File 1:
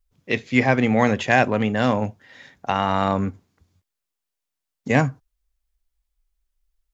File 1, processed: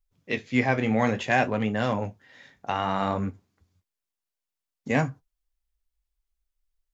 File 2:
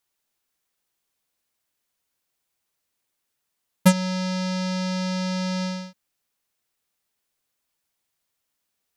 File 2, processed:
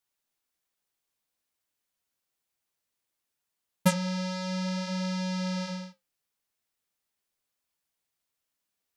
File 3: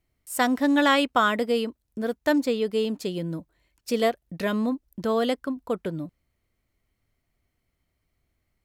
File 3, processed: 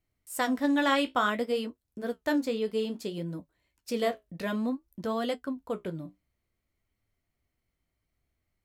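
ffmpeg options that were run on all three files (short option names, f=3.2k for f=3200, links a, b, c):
-af "flanger=delay=9.6:depth=9:regen=-49:speed=0.57:shape=sinusoidal,volume=-1.5dB"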